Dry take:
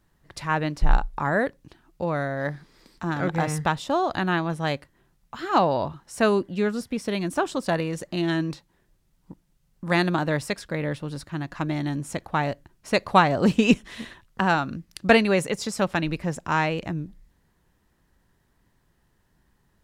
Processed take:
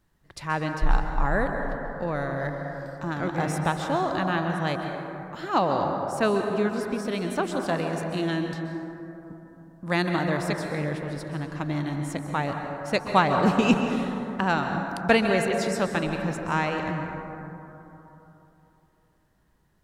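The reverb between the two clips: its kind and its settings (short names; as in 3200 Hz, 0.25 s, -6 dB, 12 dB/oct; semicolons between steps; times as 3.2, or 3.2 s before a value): plate-style reverb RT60 3.3 s, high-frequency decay 0.3×, pre-delay 0.115 s, DRR 3.5 dB; gain -3 dB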